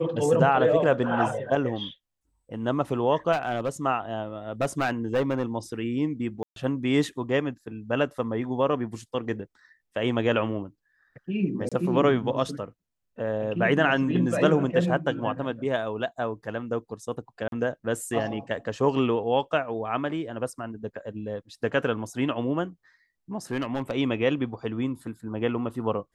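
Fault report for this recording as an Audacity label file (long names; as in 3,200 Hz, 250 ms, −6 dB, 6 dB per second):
3.320000	3.700000	clipping −21.5 dBFS
4.610000	5.430000	clipping −19.5 dBFS
6.430000	6.560000	drop-out 132 ms
11.690000	11.720000	drop-out 26 ms
17.480000	17.520000	drop-out 42 ms
23.510000	23.920000	clipping −22.5 dBFS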